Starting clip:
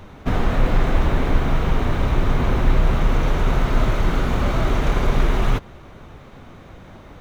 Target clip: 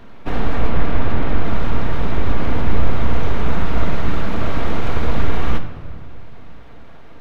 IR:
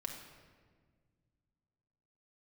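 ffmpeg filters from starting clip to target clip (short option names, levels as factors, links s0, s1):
-filter_complex "[0:a]asettb=1/sr,asplit=3[s0][s1][s2];[s0]atrim=end=0.684[s3];[s1]atrim=start=0.68:end=1.45,asetpts=PTS-STARTPTS,afade=t=in:d=0.004:c=qsin,afade=t=out:st=0.766:d=0.004:c=qsin,lowpass=4200[s4];[s2]atrim=start=1.446[s5];[s3][s4]acrossfade=d=0.004:c1=hsin:c2=qsin[s6];[s6][s5]acrossfade=d=0.004:c1=qsin:c2=hsin,aeval=exprs='abs(val(0))':c=same,asplit=2[s7][s8];[1:a]atrim=start_sample=2205,lowpass=4900[s9];[s8][s9]afir=irnorm=-1:irlink=0,volume=1.41[s10];[s7][s10]amix=inputs=2:normalize=0,volume=0.473"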